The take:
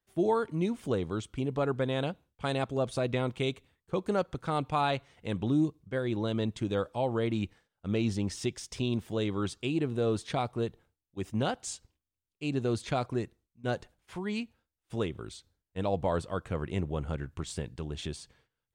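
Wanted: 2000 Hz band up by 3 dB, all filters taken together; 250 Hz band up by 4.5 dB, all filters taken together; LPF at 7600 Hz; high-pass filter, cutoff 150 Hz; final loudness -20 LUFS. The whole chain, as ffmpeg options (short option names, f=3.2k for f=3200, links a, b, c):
-af "highpass=150,lowpass=7.6k,equalizer=f=250:t=o:g=6.5,equalizer=f=2k:t=o:g=4,volume=10.5dB"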